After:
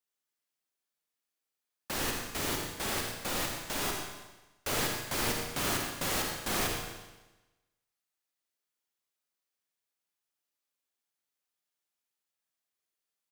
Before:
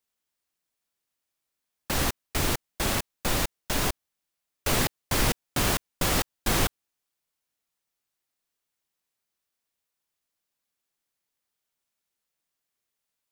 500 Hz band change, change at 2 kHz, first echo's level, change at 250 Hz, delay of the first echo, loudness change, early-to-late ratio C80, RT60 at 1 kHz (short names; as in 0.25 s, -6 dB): -5.0 dB, -4.0 dB, -9.0 dB, -6.5 dB, 83 ms, -5.0 dB, 3.0 dB, 1.1 s